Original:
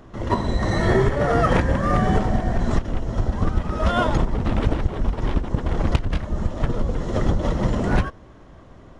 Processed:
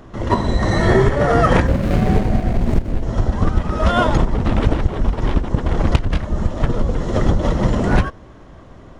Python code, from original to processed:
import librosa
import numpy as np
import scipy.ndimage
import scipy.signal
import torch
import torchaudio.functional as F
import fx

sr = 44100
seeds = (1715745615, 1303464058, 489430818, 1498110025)

y = fx.median_filter(x, sr, points=41, at=(1.67, 3.03))
y = y * 10.0 ** (4.5 / 20.0)